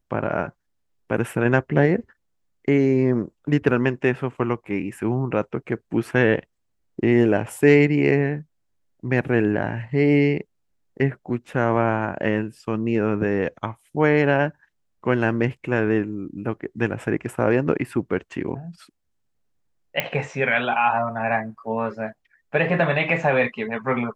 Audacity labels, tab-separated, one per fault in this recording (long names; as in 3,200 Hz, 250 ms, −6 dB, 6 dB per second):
20.000000	20.000000	click −8 dBFS